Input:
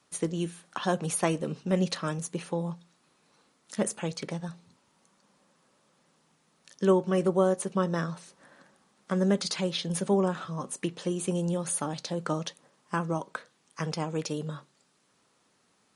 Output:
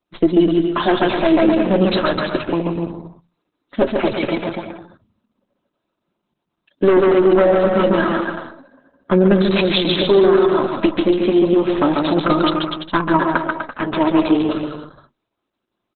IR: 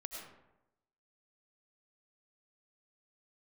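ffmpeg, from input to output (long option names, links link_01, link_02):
-filter_complex "[0:a]afftdn=noise_reduction=21:noise_floor=-51,highpass=53,lowshelf=frequency=70:gain=11,bandreject=frequency=1900:width=9.2,aecho=1:1:3.1:0.74,adynamicequalizer=threshold=0.00398:dfrequency=5700:dqfactor=1.1:tfrequency=5700:tqfactor=1.1:attack=5:release=100:ratio=0.375:range=3:mode=boostabove:tftype=bell,aeval=exprs='0.422*(cos(1*acos(clip(val(0)/0.422,-1,1)))-cos(1*PI/2))+0.0596*(cos(4*acos(clip(val(0)/0.422,-1,1)))-cos(4*PI/2))+0.15*(cos(5*acos(clip(val(0)/0.422,-1,1)))-cos(5*PI/2))+0.0237*(cos(8*acos(clip(val(0)/0.422,-1,1)))-cos(8*PI/2))':channel_layout=same,asplit=2[link_01][link_02];[link_02]adynamicsmooth=sensitivity=7:basefreq=1100,volume=-2dB[link_03];[link_01][link_03]amix=inputs=2:normalize=0,flanger=delay=5.6:depth=3.9:regen=24:speed=0.32:shape=sinusoidal,aecho=1:1:140|252|341.6|413.3|470.6:0.631|0.398|0.251|0.158|0.1,alimiter=level_in=6.5dB:limit=-1dB:release=50:level=0:latency=1,volume=-2.5dB" -ar 48000 -c:a libopus -b:a 8k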